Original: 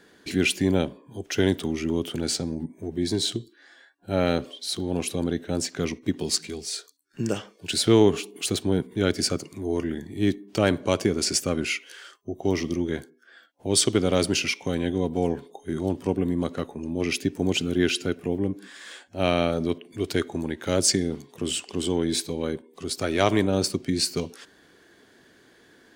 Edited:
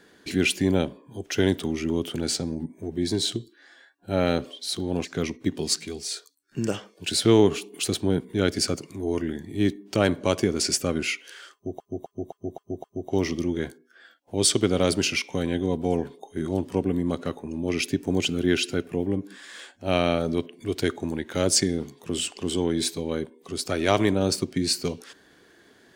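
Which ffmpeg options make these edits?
-filter_complex "[0:a]asplit=7[s0][s1][s2][s3][s4][s5][s6];[s0]atrim=end=5.052[s7];[s1]atrim=start=5.668:end=12.422[s8];[s2]atrim=start=12.158:end=12.422[s9];[s3]atrim=start=12.158:end=12.422[s10];[s4]atrim=start=12.158:end=12.422[s11];[s5]atrim=start=12.158:end=12.422[s12];[s6]atrim=start=12.158[s13];[s7][s8]acrossfade=d=0.004:c1=hsin:c2=hsin[s14];[s14][s9]acrossfade=d=0.004:c1=hsin:c2=hsin[s15];[s15][s10]acrossfade=d=0.004:c1=hsin:c2=hsin[s16];[s16][s11]acrossfade=d=0.004:c1=hsin:c2=hsin[s17];[s17][s12]acrossfade=d=0.004:c1=hsin:c2=hsin[s18];[s18][s13]acrossfade=d=0.004:c1=hsin:c2=hsin"

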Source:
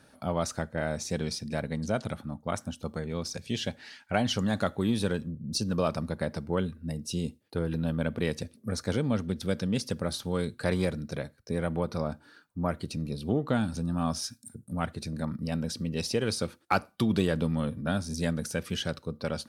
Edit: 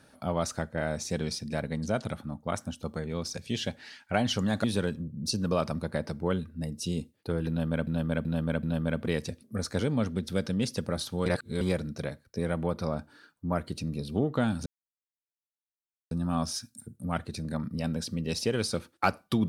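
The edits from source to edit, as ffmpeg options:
-filter_complex "[0:a]asplit=8[s0][s1][s2][s3][s4][s5][s6][s7];[s0]atrim=end=4.642[s8];[s1]atrim=start=4.908:end=8.142[s9];[s2]atrim=start=7.758:end=8.142[s10];[s3]atrim=start=7.758:end=8.142[s11];[s4]atrim=start=7.758:end=10.392[s12];[s5]atrim=start=10.388:end=10.742,asetpts=PTS-STARTPTS,areverse[s13];[s6]atrim=start=10.738:end=13.79,asetpts=PTS-STARTPTS,afade=t=out:st=3.048:d=0.004:c=hsin,apad=pad_dur=1.45[s14];[s7]atrim=start=13.79,asetpts=PTS-STARTPTS,afade=t=in:d=0.004:c=hsin[s15];[s8][s9]acrossfade=d=0.004:c1=hsin:c2=hsin[s16];[s16][s10]acrossfade=d=0.004:c1=hsin:c2=hsin[s17];[s17][s11]acrossfade=d=0.004:c1=hsin:c2=hsin[s18];[s18][s12]acrossfade=d=0.004:c1=hsin:c2=hsin[s19];[s19][s13]acrossfade=d=0.004:c1=hsin:c2=hsin[s20];[s14][s15]concat=n=2:v=0:a=1[s21];[s20][s21]acrossfade=d=0.004:c1=hsin:c2=hsin"

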